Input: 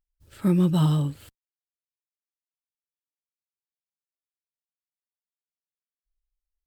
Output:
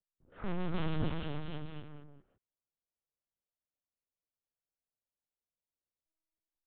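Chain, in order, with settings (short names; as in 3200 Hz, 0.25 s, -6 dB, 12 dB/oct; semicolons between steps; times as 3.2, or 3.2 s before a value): HPF 330 Hz 6 dB/oct; overloaded stage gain 35 dB; AGC gain up to 7 dB; limiter -32 dBFS, peak gain reduction 4 dB; bouncing-ball echo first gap 0.29 s, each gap 0.85×, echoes 5; low-pass opened by the level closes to 540 Hz, open at -33.5 dBFS; LPC vocoder at 8 kHz pitch kept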